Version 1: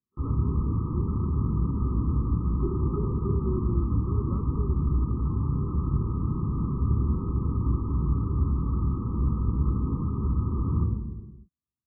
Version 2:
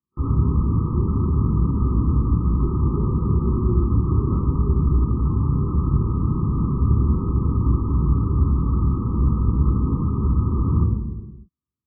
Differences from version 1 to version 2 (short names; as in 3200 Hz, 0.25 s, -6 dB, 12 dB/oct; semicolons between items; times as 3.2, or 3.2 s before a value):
speech: send on; first sound +6.5 dB